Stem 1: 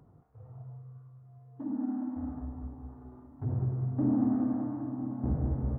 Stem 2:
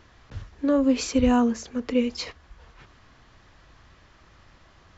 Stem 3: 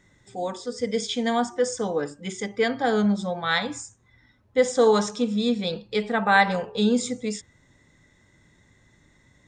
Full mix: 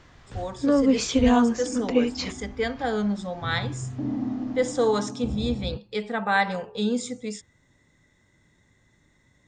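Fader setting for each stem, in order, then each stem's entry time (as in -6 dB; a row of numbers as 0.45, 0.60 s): -1.5, +1.0, -4.0 dB; 0.00, 0.00, 0.00 s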